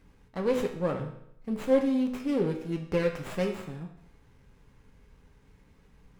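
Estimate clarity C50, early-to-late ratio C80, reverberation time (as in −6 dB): 8.0 dB, 10.5 dB, 0.75 s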